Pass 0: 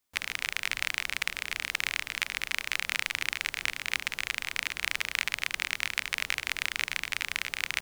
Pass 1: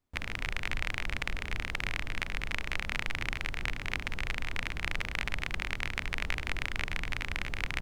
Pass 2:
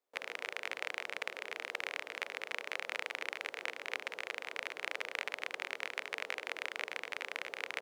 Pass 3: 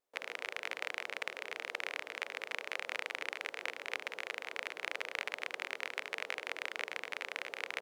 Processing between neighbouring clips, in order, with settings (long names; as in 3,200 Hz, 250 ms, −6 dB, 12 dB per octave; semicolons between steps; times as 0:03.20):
spectral tilt −4 dB per octave
four-pole ladder high-pass 420 Hz, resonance 55%; level +5.5 dB
pitch vibrato 0.83 Hz 8.5 cents